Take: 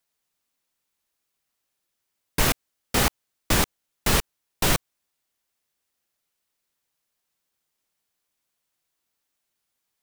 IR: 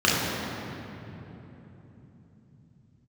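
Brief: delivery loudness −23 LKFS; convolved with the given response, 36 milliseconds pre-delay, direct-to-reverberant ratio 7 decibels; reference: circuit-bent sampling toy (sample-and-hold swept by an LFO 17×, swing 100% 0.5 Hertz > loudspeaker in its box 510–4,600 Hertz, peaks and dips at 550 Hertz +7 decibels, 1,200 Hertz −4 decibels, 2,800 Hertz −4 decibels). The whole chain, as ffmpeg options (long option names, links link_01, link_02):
-filter_complex "[0:a]asplit=2[link_01][link_02];[1:a]atrim=start_sample=2205,adelay=36[link_03];[link_02][link_03]afir=irnorm=-1:irlink=0,volume=-26.5dB[link_04];[link_01][link_04]amix=inputs=2:normalize=0,acrusher=samples=17:mix=1:aa=0.000001:lfo=1:lforange=17:lforate=0.5,highpass=510,equalizer=frequency=550:width_type=q:width=4:gain=7,equalizer=frequency=1200:width_type=q:width=4:gain=-4,equalizer=frequency=2800:width_type=q:width=4:gain=-4,lowpass=frequency=4600:width=0.5412,lowpass=frequency=4600:width=1.3066,volume=6dB"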